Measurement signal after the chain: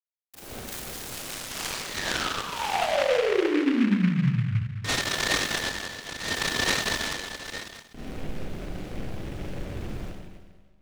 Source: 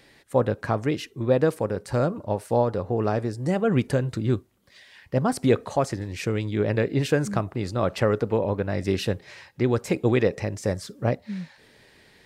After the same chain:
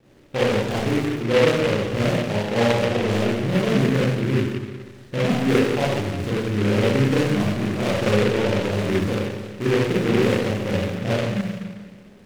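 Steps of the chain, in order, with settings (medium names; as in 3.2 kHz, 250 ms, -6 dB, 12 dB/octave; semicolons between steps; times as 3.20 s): median filter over 41 samples; in parallel at +2 dB: compression, threshold -36 dBFS; on the sum: wow and flutter 52 cents; on a send: bucket-brigade echo 155 ms, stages 2048, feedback 60%, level -19 dB; on the sum: Schroeder reverb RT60 1.3 s, combs from 30 ms, DRR -8.5 dB; delay time shaken by noise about 1.8 kHz, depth 0.11 ms; trim -6 dB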